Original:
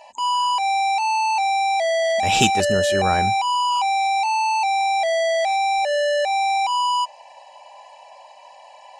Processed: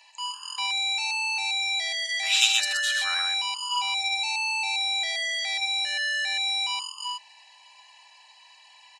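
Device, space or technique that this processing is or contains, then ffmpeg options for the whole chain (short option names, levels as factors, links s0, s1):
headphones lying on a table: -filter_complex "[0:a]asettb=1/sr,asplit=3[s0][s1][s2];[s0]atrim=end=3.624[s3];[s1]atrim=start=3.62:end=5.12,asetpts=PTS-STARTPTS,afade=t=in:d=0.004:c=qsin,afade=t=out:st=1.496:d=0.004:c=qsin,lowshelf=f=330:g=11[s4];[s2]atrim=start=5.116[s5];[s3][s4]acrossfade=d=0.004:c1=hsin:c2=qsin[s6];[s6][s5]acrossfade=d=0.004:c1=qsin:c2=hsin,highpass=f=1300:w=0.5412,highpass=f=1300:w=1.3066,equalizer=f=4000:t=o:w=0.33:g=7,aecho=1:1:78.72|125.4:0.316|0.631,volume=0.708"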